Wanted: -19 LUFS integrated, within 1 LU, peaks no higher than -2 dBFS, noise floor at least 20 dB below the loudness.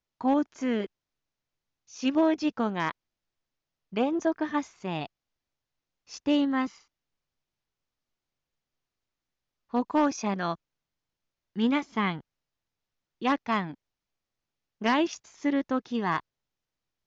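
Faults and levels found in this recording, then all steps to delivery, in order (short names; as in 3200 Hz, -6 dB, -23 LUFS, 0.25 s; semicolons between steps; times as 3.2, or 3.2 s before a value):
loudness -28.5 LUFS; peak -16.5 dBFS; loudness target -19.0 LUFS
-> gain +9.5 dB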